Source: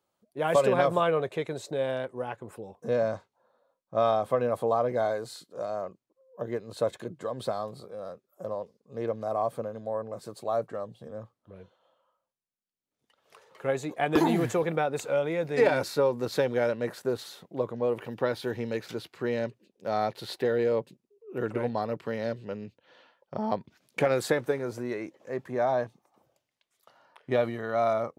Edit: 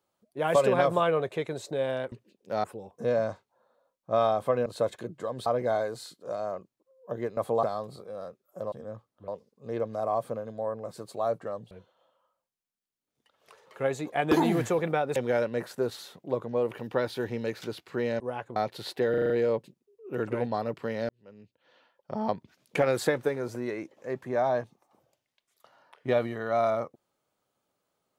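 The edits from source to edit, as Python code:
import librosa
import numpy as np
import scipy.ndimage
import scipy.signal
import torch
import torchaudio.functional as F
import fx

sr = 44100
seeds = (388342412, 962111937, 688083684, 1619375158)

y = fx.edit(x, sr, fx.swap(start_s=2.12, length_s=0.36, other_s=19.47, other_length_s=0.52),
    fx.swap(start_s=4.5, length_s=0.26, other_s=6.67, other_length_s=0.8),
    fx.move(start_s=10.99, length_s=0.56, to_s=8.56),
    fx.cut(start_s=15.0, length_s=1.43),
    fx.stutter(start_s=20.53, slice_s=0.04, count=6),
    fx.fade_in_span(start_s=22.32, length_s=1.19), tone=tone)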